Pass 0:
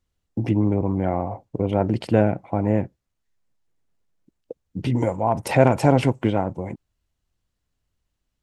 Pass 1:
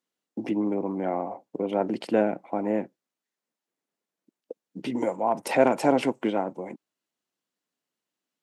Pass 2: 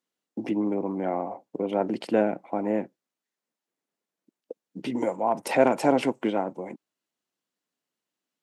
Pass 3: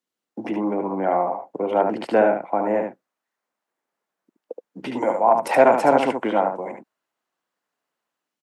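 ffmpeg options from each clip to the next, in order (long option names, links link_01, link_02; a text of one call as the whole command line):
ffmpeg -i in.wav -af "highpass=frequency=220:width=0.5412,highpass=frequency=220:width=1.3066,volume=-3dB" out.wav
ffmpeg -i in.wav -af anull out.wav
ffmpeg -i in.wav -filter_complex "[0:a]acrossover=split=140|600|1800[link_01][link_02][link_03][link_04];[link_03]dynaudnorm=framelen=130:gausssize=5:maxgain=12dB[link_05];[link_01][link_02][link_05][link_04]amix=inputs=4:normalize=0,aecho=1:1:73:0.531,volume=-1dB" out.wav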